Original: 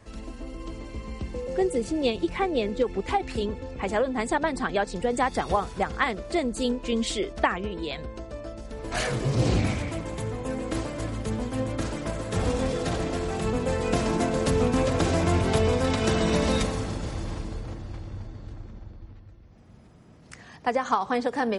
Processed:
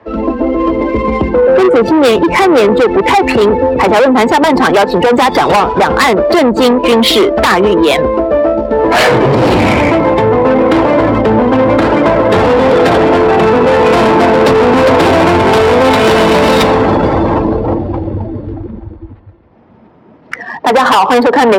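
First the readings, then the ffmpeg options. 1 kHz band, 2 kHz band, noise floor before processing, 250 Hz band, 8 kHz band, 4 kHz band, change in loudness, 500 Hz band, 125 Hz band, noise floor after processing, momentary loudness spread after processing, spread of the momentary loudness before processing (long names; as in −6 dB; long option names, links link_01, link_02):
+20.0 dB, +18.5 dB, −49 dBFS, +18.0 dB, +10.5 dB, +18.0 dB, +18.0 dB, +20.0 dB, +11.0 dB, −39 dBFS, 6 LU, 15 LU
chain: -filter_complex "[0:a]acrossover=split=280|5200[link_01][link_02][link_03];[link_02]aeval=exprs='0.422*sin(PI/2*3.98*val(0)/0.422)':channel_layout=same[link_04];[link_01][link_04][link_03]amix=inputs=3:normalize=0,afftdn=noise_reduction=17:noise_floor=-27,lowshelf=frequency=350:gain=5.5,asoftclip=type=tanh:threshold=-14.5dB,acompressor=threshold=-20dB:ratio=4,equalizer=frequency=920:width_type=o:width=0.24:gain=6.5,adynamicsmooth=sensitivity=4.5:basefreq=2700,highpass=63,bandreject=frequency=6300:width=19,alimiter=level_in=15.5dB:limit=-1dB:release=50:level=0:latency=1,volume=-1dB"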